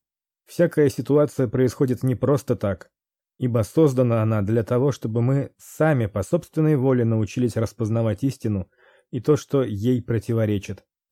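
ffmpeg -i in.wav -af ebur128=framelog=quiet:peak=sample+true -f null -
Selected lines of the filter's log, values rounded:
Integrated loudness:
  I:         -22.1 LUFS
  Threshold: -32.6 LUFS
Loudness range:
  LRA:         2.3 LU
  Threshold: -42.6 LUFS
  LRA low:   -24.1 LUFS
  LRA high:  -21.7 LUFS
Sample peak:
  Peak:       -7.0 dBFS
True peak:
  Peak:       -7.0 dBFS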